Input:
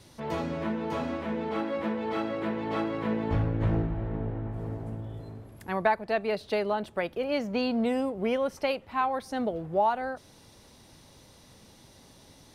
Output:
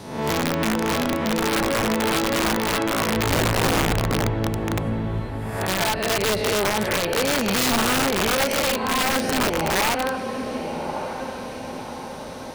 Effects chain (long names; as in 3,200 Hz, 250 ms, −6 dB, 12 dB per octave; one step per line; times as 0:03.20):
peak hold with a rise ahead of every peak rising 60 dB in 0.75 s
dynamic equaliser 680 Hz, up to −4 dB, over −39 dBFS, Q 3.1
brickwall limiter −22 dBFS, peak gain reduction 9.5 dB
on a send: feedback delay with all-pass diffusion 1,148 ms, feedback 55%, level −8 dB
on the sum: wrap-around overflow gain 23.5 dB
level +8.5 dB